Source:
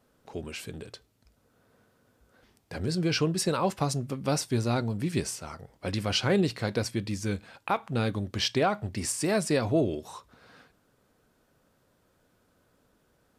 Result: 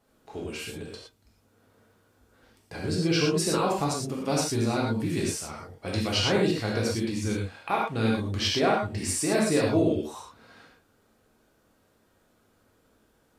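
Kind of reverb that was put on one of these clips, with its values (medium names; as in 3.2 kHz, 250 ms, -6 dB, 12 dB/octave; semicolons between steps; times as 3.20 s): gated-style reverb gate 140 ms flat, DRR -3.5 dB; trim -2.5 dB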